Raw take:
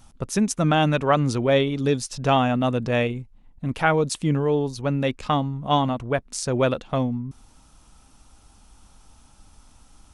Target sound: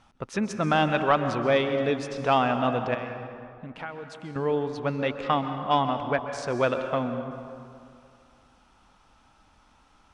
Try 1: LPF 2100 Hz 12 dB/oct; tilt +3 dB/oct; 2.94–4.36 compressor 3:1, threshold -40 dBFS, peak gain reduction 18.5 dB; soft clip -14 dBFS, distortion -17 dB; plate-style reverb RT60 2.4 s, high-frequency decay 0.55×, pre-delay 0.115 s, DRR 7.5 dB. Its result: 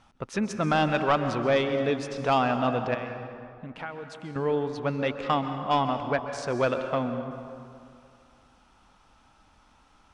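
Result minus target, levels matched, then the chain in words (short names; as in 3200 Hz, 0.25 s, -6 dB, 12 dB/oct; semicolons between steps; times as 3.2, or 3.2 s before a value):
soft clip: distortion +8 dB
LPF 2100 Hz 12 dB/oct; tilt +3 dB/oct; 2.94–4.36 compressor 3:1, threshold -40 dBFS, peak gain reduction 18.5 dB; soft clip -8 dBFS, distortion -25 dB; plate-style reverb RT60 2.4 s, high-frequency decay 0.55×, pre-delay 0.115 s, DRR 7.5 dB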